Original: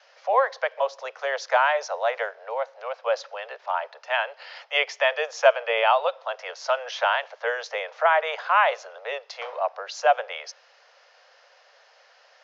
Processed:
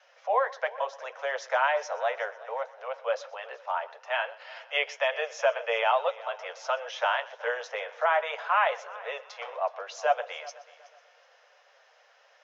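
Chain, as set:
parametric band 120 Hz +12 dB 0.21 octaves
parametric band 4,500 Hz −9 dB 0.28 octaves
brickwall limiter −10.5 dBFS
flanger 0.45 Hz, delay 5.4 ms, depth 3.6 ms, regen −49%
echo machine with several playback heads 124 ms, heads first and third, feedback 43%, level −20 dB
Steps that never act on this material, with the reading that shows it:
parametric band 120 Hz: nothing at its input below 400 Hz

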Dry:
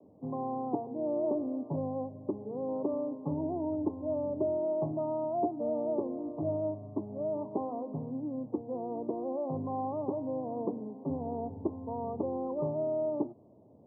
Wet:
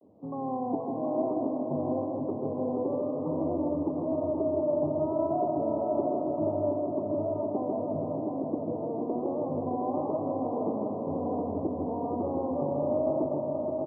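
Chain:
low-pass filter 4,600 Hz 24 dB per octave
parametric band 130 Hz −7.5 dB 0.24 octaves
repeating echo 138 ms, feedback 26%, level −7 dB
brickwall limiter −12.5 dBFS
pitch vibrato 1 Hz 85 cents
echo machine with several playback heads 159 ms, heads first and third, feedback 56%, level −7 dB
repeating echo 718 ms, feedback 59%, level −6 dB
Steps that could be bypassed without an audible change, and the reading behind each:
low-pass filter 4,600 Hz: nothing at its input above 1,100 Hz
brickwall limiter −12.5 dBFS: peak of its input −18.5 dBFS

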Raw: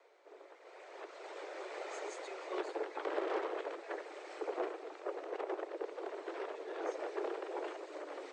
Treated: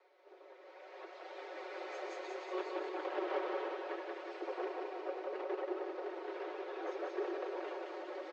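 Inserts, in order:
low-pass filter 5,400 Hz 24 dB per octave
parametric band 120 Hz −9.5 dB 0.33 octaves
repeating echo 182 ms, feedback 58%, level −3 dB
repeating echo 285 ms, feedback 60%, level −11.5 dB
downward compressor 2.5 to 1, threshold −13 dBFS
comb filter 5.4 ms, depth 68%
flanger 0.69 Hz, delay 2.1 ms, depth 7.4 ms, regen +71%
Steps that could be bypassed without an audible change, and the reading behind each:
parametric band 120 Hz: nothing at its input below 250 Hz
downward compressor, threshold −13 dBFS: peak of its input −21.5 dBFS

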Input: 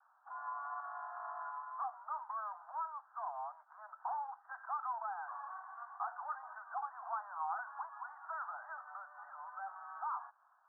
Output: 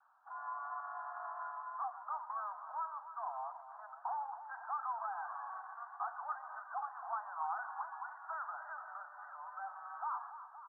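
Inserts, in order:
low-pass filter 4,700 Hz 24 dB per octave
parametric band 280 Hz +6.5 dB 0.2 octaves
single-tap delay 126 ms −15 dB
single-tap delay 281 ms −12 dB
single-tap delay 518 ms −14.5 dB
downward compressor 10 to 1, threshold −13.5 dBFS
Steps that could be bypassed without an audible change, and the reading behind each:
low-pass filter 4,700 Hz: nothing at its input above 1,700 Hz
parametric band 280 Hz: nothing at its input below 540 Hz
downward compressor, threshold −13.5 dBFS: peak of its input −27.5 dBFS

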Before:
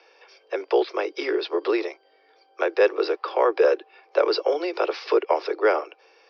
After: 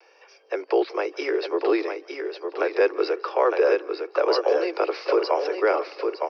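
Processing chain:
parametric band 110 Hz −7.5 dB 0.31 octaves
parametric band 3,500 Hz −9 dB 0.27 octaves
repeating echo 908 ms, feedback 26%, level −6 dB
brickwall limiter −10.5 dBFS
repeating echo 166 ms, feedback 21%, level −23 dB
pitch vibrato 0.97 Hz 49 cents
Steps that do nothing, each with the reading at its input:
parametric band 110 Hz: nothing at its input below 270 Hz

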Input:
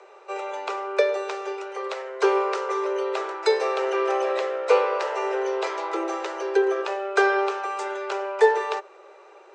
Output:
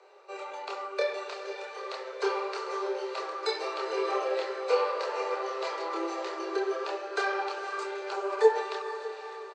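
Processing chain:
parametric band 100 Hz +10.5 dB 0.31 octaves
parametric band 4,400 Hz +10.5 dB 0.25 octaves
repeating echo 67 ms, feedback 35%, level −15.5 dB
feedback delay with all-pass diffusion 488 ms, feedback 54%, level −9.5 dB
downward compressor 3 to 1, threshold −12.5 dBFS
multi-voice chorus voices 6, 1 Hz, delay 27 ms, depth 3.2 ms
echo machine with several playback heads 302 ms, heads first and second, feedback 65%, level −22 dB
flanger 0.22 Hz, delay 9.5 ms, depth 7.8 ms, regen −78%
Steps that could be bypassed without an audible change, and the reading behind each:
parametric band 100 Hz: nothing at its input below 320 Hz

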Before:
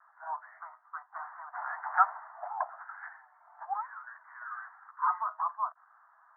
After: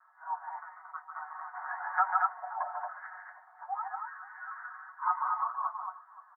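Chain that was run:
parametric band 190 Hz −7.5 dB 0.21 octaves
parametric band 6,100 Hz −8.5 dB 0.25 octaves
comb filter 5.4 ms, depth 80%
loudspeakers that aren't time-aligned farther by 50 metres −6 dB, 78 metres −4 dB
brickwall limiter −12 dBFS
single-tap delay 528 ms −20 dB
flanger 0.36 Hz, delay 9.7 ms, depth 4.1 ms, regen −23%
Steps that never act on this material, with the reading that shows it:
parametric band 190 Hz: nothing at its input below 570 Hz
parametric band 6,100 Hz: nothing at its input above 1,900 Hz

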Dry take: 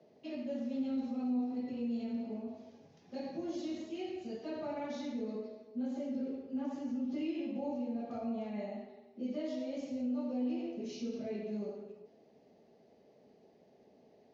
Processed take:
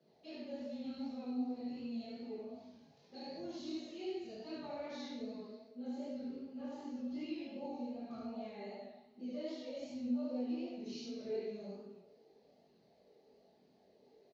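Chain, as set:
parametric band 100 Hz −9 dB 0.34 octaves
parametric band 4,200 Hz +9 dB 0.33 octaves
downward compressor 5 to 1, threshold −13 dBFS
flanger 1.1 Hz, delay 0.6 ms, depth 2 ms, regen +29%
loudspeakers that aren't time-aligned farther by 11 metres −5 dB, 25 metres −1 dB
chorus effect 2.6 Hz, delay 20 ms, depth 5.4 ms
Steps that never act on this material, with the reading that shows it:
downward compressor, threshold −13 dBFS: peak of its input −26.0 dBFS

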